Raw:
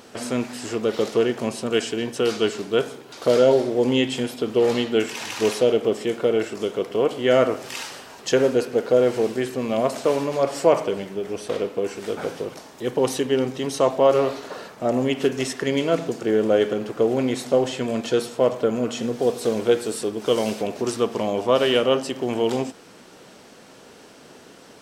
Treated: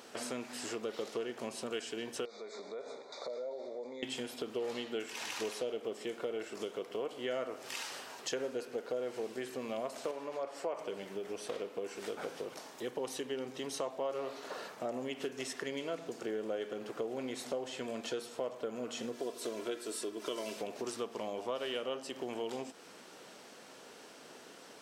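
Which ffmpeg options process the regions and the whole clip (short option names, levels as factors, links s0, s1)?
-filter_complex "[0:a]asettb=1/sr,asplit=3[s0][s1][s2];[s0]atrim=end=2.254[s3];[s1]atrim=start=2.25:end=4.03,asetpts=PTS-STARTPTS,afade=t=in:d=0.004:c=qsin,afade=t=out:st=1.776:d=0.004:c=qsin,acompressor=threshold=0.0251:ratio=5:attack=3.2:release=140:knee=1:detection=peak,asuperstop=centerf=2900:order=20:qfactor=2.7,highpass=260,equalizer=f=320:t=q:w=4:g=-8,equalizer=f=570:t=q:w=4:g=8,equalizer=f=1600:t=q:w=4:g=-10,equalizer=f=3400:t=q:w=4:g=4,equalizer=f=5400:t=q:w=4:g=-5,lowpass=f=6300:w=0.5412,lowpass=f=6300:w=1.3066[s4];[s2]atrim=start=4.026[s5];[s3][s4]acrossfade=d=0.004:c1=hsin:c2=qsin[s6];[s6][s5]acrossfade=d=0.004:c1=qsin:c2=hsin,asettb=1/sr,asplit=3[s7][s8][s9];[s7]atrim=end=10.114[s10];[s8]atrim=start=10.11:end=10.79,asetpts=PTS-STARTPTS,afade=t=in:d=0.004:c=qsin,afade=t=out:st=0.676:d=0.004:c=qsin,highpass=f=390:p=1,highshelf=f=2800:g=-10[s11];[s9]atrim=start=10.786[s12];[s10][s11]acrossfade=d=0.004:c1=hsin:c2=qsin[s13];[s13][s12]acrossfade=d=0.004:c1=qsin:c2=hsin,asettb=1/sr,asplit=3[s14][s15][s16];[s14]atrim=end=19.124[s17];[s15]atrim=start=19.12:end=20.57,asetpts=PTS-STARTPTS,afade=t=in:d=0.004:c=qsin,afade=t=out:st=1.446:d=0.004:c=qsin,lowshelf=f=86:g=-11.5,bandreject=f=760:w=6.9,aecho=1:1:3:0.5,atrim=end_sample=63945[s18];[s16]atrim=start=20.566[s19];[s17][s18]acrossfade=d=0.004:c1=hsin:c2=qsin[s20];[s20][s19]acrossfade=d=0.004:c1=qsin:c2=hsin,highpass=f=380:p=1,acompressor=threshold=0.0224:ratio=3,volume=0.562"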